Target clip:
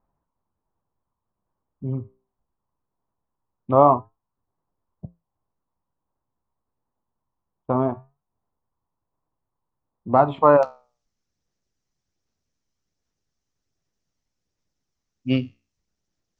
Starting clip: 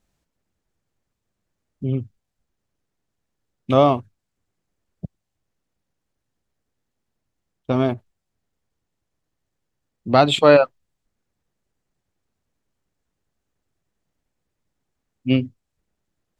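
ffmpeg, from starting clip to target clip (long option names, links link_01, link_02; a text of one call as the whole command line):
ffmpeg -i in.wav -af "aphaser=in_gain=1:out_gain=1:delay=1:decay=0.22:speed=1.3:type=sinusoidal,asetnsamples=nb_out_samples=441:pad=0,asendcmd='10.63 lowpass f 5800',lowpass=frequency=1000:width_type=q:width=4.3,flanger=delay=7.2:depth=9.4:regen=-76:speed=0.22:shape=sinusoidal,volume=-1.5dB" out.wav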